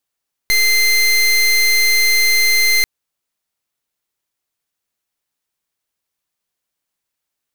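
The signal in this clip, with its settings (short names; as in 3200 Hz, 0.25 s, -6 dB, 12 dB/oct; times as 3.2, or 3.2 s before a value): pulse 2080 Hz, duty 26% -13 dBFS 2.34 s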